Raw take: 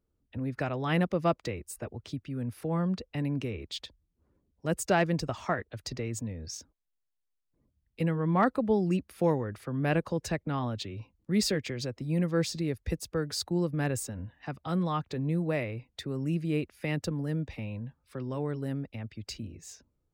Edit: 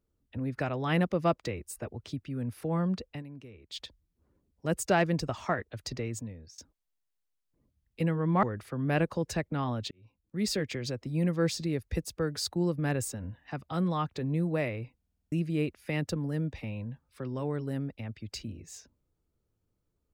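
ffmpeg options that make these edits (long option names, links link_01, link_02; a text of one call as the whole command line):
ffmpeg -i in.wav -filter_complex "[0:a]asplit=13[link_01][link_02][link_03][link_04][link_05][link_06][link_07][link_08][link_09][link_10][link_11][link_12][link_13];[link_01]atrim=end=3.23,asetpts=PTS-STARTPTS,afade=type=out:start_time=3.09:duration=0.14:silence=0.188365[link_14];[link_02]atrim=start=3.23:end=3.66,asetpts=PTS-STARTPTS,volume=-14.5dB[link_15];[link_03]atrim=start=3.66:end=6.58,asetpts=PTS-STARTPTS,afade=type=in:duration=0.14:silence=0.188365,afade=type=out:start_time=2.38:duration=0.54:silence=0.0944061[link_16];[link_04]atrim=start=6.58:end=8.432,asetpts=PTS-STARTPTS,afade=type=in:duration=0.004:curve=hsin:silence=0.0944061[link_17];[link_05]atrim=start=9.378:end=10.86,asetpts=PTS-STARTPTS,afade=type=out:start_time=1.478:duration=0.004:curve=hsin[link_18];[link_06]atrim=start=10.86:end=15.972,asetpts=PTS-STARTPTS,afade=type=in:duration=0.82[link_19];[link_07]atrim=start=15.918:end=15.972[link_20];[link_08]atrim=start=15.918:end=15.972[link_21];[link_09]atrim=start=15.918:end=15.972[link_22];[link_10]atrim=start=15.918:end=15.972[link_23];[link_11]atrim=start=15.918:end=15.972[link_24];[link_12]atrim=start=15.918:end=15.972[link_25];[link_13]atrim=start=16.268[link_26];[link_14][link_15][link_16][link_17]concat=n=4:v=0:a=1[link_27];[link_18][link_19]concat=n=2:v=0:a=1[link_28];[link_27][link_28]acrossfade=duration=0.004:curve1=hsin:curve2=hsin[link_29];[link_29][link_20]acrossfade=duration=0.004:curve1=hsin:curve2=hsin[link_30];[link_30][link_21]acrossfade=duration=0.004:curve1=hsin:curve2=hsin[link_31];[link_31][link_22]acrossfade=duration=0.004:curve1=hsin:curve2=hsin[link_32];[link_32][link_23]acrossfade=duration=0.004:curve1=hsin:curve2=hsin[link_33];[link_33][link_24]acrossfade=duration=0.004:curve1=hsin:curve2=hsin[link_34];[link_34][link_25]acrossfade=duration=0.004:curve1=hsin:curve2=hsin[link_35];[link_35][link_26]acrossfade=duration=0.004:curve1=hsin:curve2=hsin" out.wav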